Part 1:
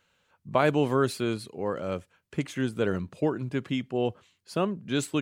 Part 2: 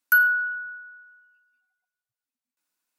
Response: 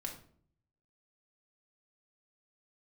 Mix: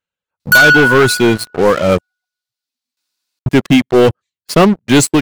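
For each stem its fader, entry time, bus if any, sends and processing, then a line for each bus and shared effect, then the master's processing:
-5.0 dB, 0.00 s, muted 2.01–3.46 s, no send, reverb removal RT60 0.88 s; waveshaping leveller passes 3
+1.0 dB, 0.40 s, no send, peaking EQ 4.3 kHz +14 dB 1.2 oct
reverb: none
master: waveshaping leveller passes 3; level rider gain up to 7 dB

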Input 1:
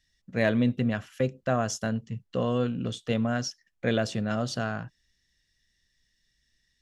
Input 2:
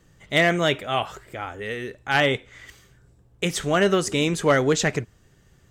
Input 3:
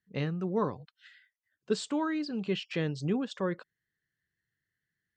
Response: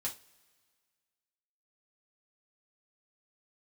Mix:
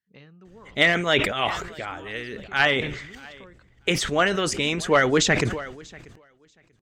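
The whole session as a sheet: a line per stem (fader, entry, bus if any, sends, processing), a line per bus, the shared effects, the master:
mute
-2.0 dB, 0.45 s, no send, echo send -23.5 dB, treble shelf 6.8 kHz -7 dB; harmonic-percussive split harmonic -10 dB; bass shelf 400 Hz +6 dB
-8.5 dB, 0.00 s, no send, no echo send, compression 2.5:1, threshold -44 dBFS, peak gain reduction 14 dB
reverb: none
echo: feedback delay 638 ms, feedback 17%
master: peaking EQ 2.8 kHz +6.5 dB 2.9 oct; decay stretcher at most 64 dB/s

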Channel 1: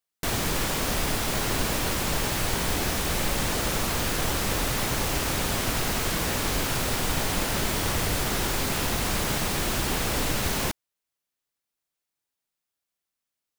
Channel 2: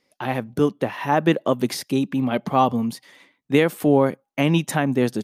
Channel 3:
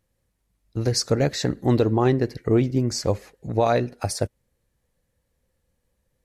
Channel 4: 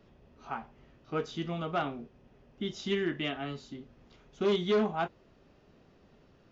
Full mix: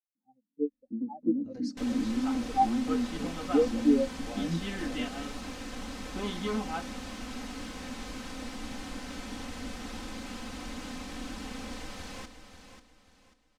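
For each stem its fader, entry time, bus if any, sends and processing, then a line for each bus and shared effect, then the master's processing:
-9.0 dB, 1.00 s, bus A, no send, echo send -7.5 dB, none
-11.5 dB, 0.00 s, no bus, no send, no echo send, spectral contrast expander 4:1
-3.0 dB, 0.15 s, bus A, no send, echo send -22 dB, none
-6.0 dB, 1.75 s, no bus, no send, no echo send, none
bus A: 0.0 dB, Butterworth band-pass 250 Hz, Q 3.4; peak limiter -29.5 dBFS, peak gain reduction 10 dB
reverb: none
echo: feedback delay 540 ms, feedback 32%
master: low-pass 6.9 kHz 12 dB/octave; comb 3.9 ms, depth 69%

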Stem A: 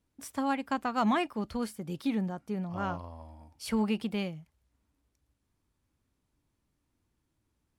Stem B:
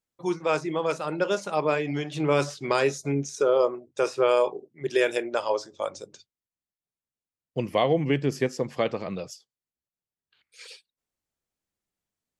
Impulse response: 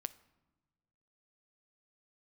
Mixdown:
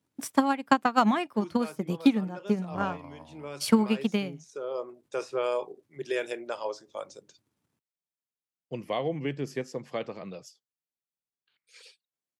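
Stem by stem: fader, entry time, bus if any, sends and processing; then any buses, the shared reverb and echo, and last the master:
+0.5 dB, 0.00 s, no send, transient shaper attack +12 dB, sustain -5 dB
-7.5 dB, 1.15 s, no send, auto duck -10 dB, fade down 1.70 s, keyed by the first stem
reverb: none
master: high-pass 110 Hz 24 dB/octave

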